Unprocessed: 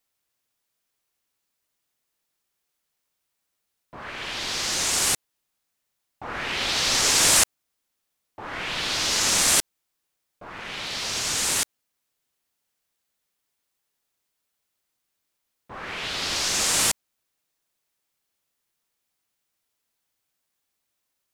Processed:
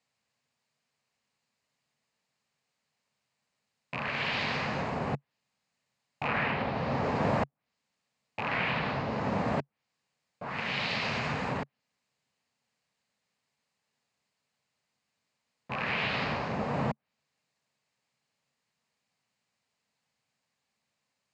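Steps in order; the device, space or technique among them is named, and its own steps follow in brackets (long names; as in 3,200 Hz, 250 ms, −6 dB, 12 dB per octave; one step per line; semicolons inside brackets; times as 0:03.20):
car door speaker with a rattle (loose part that buzzes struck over −45 dBFS, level −24 dBFS; loudspeaker in its box 93–6,600 Hz, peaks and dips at 140 Hz +7 dB, 220 Hz +5 dB, 340 Hz −10 dB, 1,400 Hz −5 dB, 3,400 Hz −7 dB, 5,800 Hz −8 dB)
treble cut that deepens with the level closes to 830 Hz, closed at −25 dBFS
level +4 dB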